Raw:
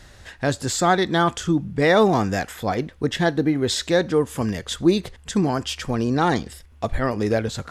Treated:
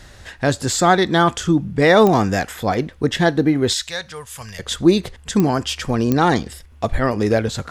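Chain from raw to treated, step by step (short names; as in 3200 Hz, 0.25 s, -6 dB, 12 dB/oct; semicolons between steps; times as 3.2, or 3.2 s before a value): 3.73–4.59 passive tone stack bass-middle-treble 10-0-10; pops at 2.07/5.4/6.12, -10 dBFS; gain +4 dB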